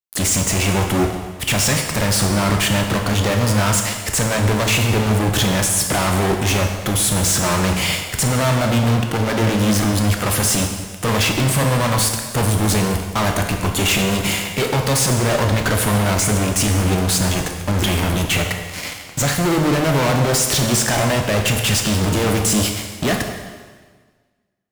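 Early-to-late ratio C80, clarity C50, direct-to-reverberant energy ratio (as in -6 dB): 7.0 dB, 5.0 dB, 3.0 dB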